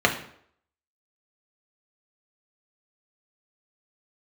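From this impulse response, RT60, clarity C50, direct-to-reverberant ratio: 0.65 s, 10.0 dB, 1.0 dB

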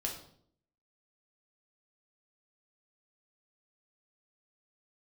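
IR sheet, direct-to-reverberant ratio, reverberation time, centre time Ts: -0.5 dB, 0.60 s, 26 ms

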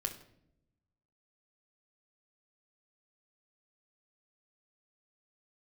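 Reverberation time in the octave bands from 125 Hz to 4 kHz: 1.5 s, 1.2 s, 0.90 s, 0.60 s, 0.55 s, 0.50 s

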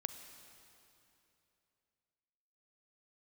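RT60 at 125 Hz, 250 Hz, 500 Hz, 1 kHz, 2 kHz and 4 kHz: 3.2 s, 3.0 s, 3.1 s, 2.8 s, 2.7 s, 2.6 s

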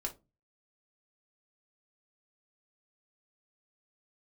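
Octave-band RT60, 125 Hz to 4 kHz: 0.50 s, 0.40 s, 0.30 s, 0.20 s, 0.20 s, 0.15 s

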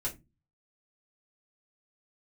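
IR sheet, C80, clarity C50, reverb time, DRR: 24.5 dB, 15.0 dB, no single decay rate, -5.5 dB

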